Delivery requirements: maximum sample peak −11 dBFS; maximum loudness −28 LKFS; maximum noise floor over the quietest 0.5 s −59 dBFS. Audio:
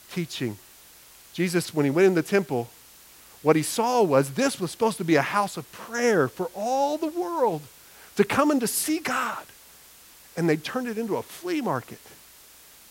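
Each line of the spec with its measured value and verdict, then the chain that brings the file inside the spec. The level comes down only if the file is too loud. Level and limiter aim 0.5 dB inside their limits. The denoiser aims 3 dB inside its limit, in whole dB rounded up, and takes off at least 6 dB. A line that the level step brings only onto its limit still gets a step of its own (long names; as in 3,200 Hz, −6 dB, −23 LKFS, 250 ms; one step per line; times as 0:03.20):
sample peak −4.5 dBFS: out of spec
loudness −25.0 LKFS: out of spec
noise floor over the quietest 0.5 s −51 dBFS: out of spec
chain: broadband denoise 8 dB, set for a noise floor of −51 dBFS
level −3.5 dB
brickwall limiter −11.5 dBFS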